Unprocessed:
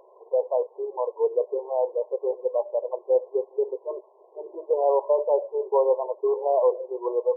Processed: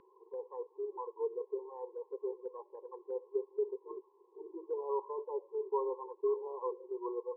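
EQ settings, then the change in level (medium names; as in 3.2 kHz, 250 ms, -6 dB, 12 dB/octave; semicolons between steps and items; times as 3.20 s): distance through air 340 m; dynamic bell 350 Hz, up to -4 dB, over -40 dBFS, Q 5.5; Butterworth band-stop 640 Hz, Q 0.66; +3.0 dB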